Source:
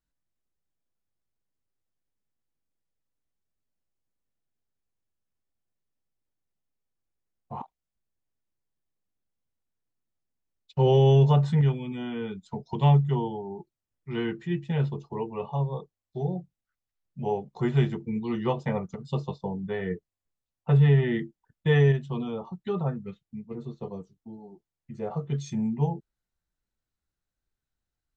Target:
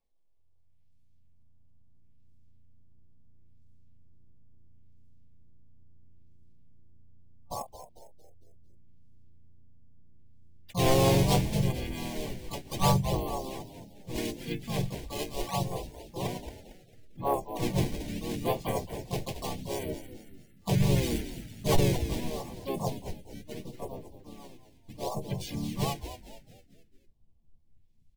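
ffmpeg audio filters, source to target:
ffmpeg -i in.wav -filter_complex "[0:a]equalizer=frequency=89:width=0.47:gain=-13,aecho=1:1:1.2:0.31,acrusher=samples=12:mix=1:aa=0.000001:lfo=1:lforange=19.2:lforate=0.74,asubboost=boost=11:cutoff=56,afftfilt=real='re*(1-between(b*sr/4096,880,2100))':imag='im*(1-between(b*sr/4096,880,2100))':win_size=4096:overlap=0.75,asplit=2[link_01][link_02];[link_02]asplit=5[link_03][link_04][link_05][link_06][link_07];[link_03]adelay=225,afreqshift=-87,volume=-11dB[link_08];[link_04]adelay=450,afreqshift=-174,volume=-18.1dB[link_09];[link_05]adelay=675,afreqshift=-261,volume=-25.3dB[link_10];[link_06]adelay=900,afreqshift=-348,volume=-32.4dB[link_11];[link_07]adelay=1125,afreqshift=-435,volume=-39.5dB[link_12];[link_08][link_09][link_10][link_11][link_12]amix=inputs=5:normalize=0[link_13];[link_01][link_13]amix=inputs=2:normalize=0,asplit=4[link_14][link_15][link_16][link_17];[link_15]asetrate=29433,aresample=44100,atempo=1.49831,volume=-7dB[link_18];[link_16]asetrate=37084,aresample=44100,atempo=1.18921,volume=-2dB[link_19];[link_17]asetrate=58866,aresample=44100,atempo=0.749154,volume=-2dB[link_20];[link_14][link_18][link_19][link_20]amix=inputs=4:normalize=0,asoftclip=type=tanh:threshold=-13.5dB" out.wav

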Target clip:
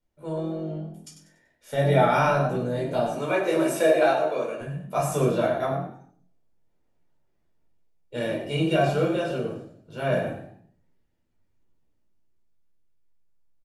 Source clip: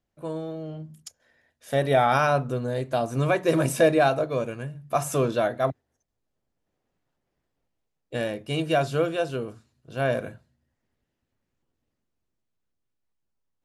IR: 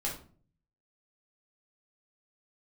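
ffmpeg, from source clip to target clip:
-filter_complex "[0:a]asettb=1/sr,asplit=3[link_01][link_02][link_03];[link_01]atrim=end=3.074[link_04];[link_02]atrim=start=3.07:end=4.61,asetpts=PTS-STARTPTS,afade=type=in:duration=0.004:curve=qsin,afade=type=out:start_time=1.536:duration=0.004:curve=qsin,highpass=350[link_05];[link_03]atrim=start=4.606[link_06];[link_04][link_05]acrossfade=duration=0.004:curve1=hsin:curve2=qsin[link_07];[link_07][link_06]acrossfade=duration=0.004:curve1=qsin:curve2=hsin,asplit=5[link_08][link_09][link_10][link_11][link_12];[link_09]adelay=96,afreqshift=43,volume=-9dB[link_13];[link_10]adelay=192,afreqshift=86,volume=-18.9dB[link_14];[link_11]adelay=288,afreqshift=129,volume=-28.8dB[link_15];[link_12]adelay=384,afreqshift=172,volume=-38.7dB[link_16];[link_08][link_13][link_14][link_15][link_16]amix=inputs=5:normalize=0[link_17];[1:a]atrim=start_sample=2205,asetrate=48510,aresample=44100[link_18];[link_17][link_18]afir=irnorm=-1:irlink=0,volume=-3.5dB"

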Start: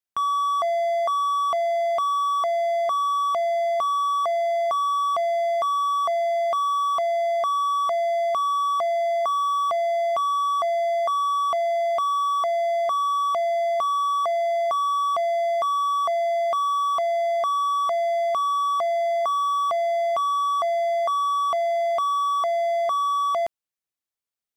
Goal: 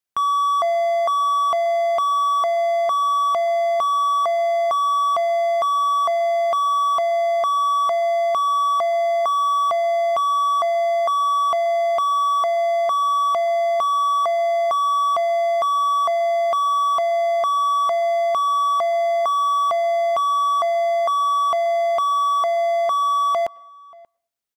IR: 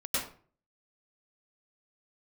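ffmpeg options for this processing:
-filter_complex "[0:a]asplit=2[link_01][link_02];[link_02]adelay=583.1,volume=-24dB,highshelf=frequency=4000:gain=-13.1[link_03];[link_01][link_03]amix=inputs=2:normalize=0,asplit=2[link_04][link_05];[1:a]atrim=start_sample=2205,lowpass=3000,lowshelf=frequency=410:gain=-9.5[link_06];[link_05][link_06]afir=irnorm=-1:irlink=0,volume=-29dB[link_07];[link_04][link_07]amix=inputs=2:normalize=0,volume=3.5dB"

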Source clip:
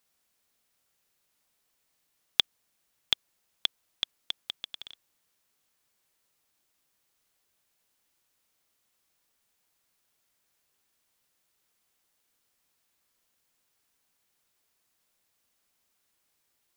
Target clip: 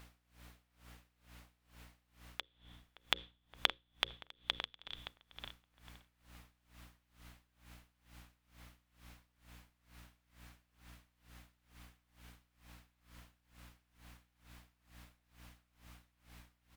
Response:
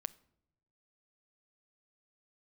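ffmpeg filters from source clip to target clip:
-filter_complex "[0:a]asplit=2[link_01][link_02];[link_02]asubboost=boost=9:cutoff=130[link_03];[1:a]atrim=start_sample=2205,asetrate=33075,aresample=44100[link_04];[link_03][link_04]afir=irnorm=-1:irlink=0,volume=11.5dB[link_05];[link_01][link_05]amix=inputs=2:normalize=0,acompressor=threshold=-35dB:ratio=6,bass=frequency=250:gain=-12,treble=frequency=4000:gain=-13,bandreject=frequency=60:width_type=h:width=6,bandreject=frequency=120:width_type=h:width=6,bandreject=frequency=180:width_type=h:width=6,bandreject=frequency=240:width_type=h:width=6,bandreject=frequency=300:width_type=h:width=6,bandreject=frequency=360:width_type=h:width=6,bandreject=frequency=420:width_type=h:width=6,bandreject=frequency=480:width_type=h:width=6,bandreject=frequency=540:width_type=h:width=6,asplit=2[link_06][link_07];[link_07]adelay=570,lowpass=frequency=2000:poles=1,volume=-5.5dB,asplit=2[link_08][link_09];[link_09]adelay=570,lowpass=frequency=2000:poles=1,volume=0.31,asplit=2[link_10][link_11];[link_11]adelay=570,lowpass=frequency=2000:poles=1,volume=0.31,asplit=2[link_12][link_13];[link_13]adelay=570,lowpass=frequency=2000:poles=1,volume=0.31[link_14];[link_06][link_08][link_10][link_12][link_14]amix=inputs=5:normalize=0,aeval=exprs='val(0)+0.000562*(sin(2*PI*60*n/s)+sin(2*PI*2*60*n/s)/2+sin(2*PI*3*60*n/s)/3+sin(2*PI*4*60*n/s)/4+sin(2*PI*5*60*n/s)/5)':channel_layout=same,aeval=exprs='val(0)*pow(10,-24*(0.5-0.5*cos(2*PI*2.2*n/s))/20)':channel_layout=same,volume=9.5dB"

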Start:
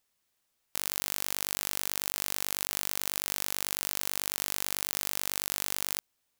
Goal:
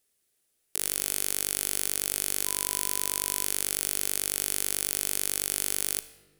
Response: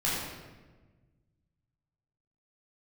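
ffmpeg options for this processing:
-filter_complex "[0:a]equalizer=frequency=400:width_type=o:width=0.67:gain=8,equalizer=frequency=1000:width_type=o:width=0.67:gain=-8,equalizer=frequency=10000:width_type=o:width=0.67:gain=9,asettb=1/sr,asplit=3[link_01][link_02][link_03];[link_01]atrim=end=2.464[link_04];[link_02]atrim=start=2.46:end=3.45,asetpts=PTS-STARTPTS,afade=type=in:duration=0.004:curve=qsin,afade=type=out:start_time=0.986:duration=0.004:curve=qsin,aeval=exprs='val(0)+0.00501*sin(2*PI*1000*n/s)':channel_layout=same[link_05];[link_03]atrim=start=3.446[link_06];[link_04][link_05]acrossfade=duration=0.004:curve1=hsin:curve2=qsin[link_07];[link_07][link_06]acrossfade=duration=0.004:curve1=qsin:curve2=hsin,asplit=2[link_08][link_09];[1:a]atrim=start_sample=2205,adelay=37[link_10];[link_09][link_10]afir=irnorm=-1:irlink=0,volume=-23.5dB[link_11];[link_08][link_11]amix=inputs=2:normalize=0"

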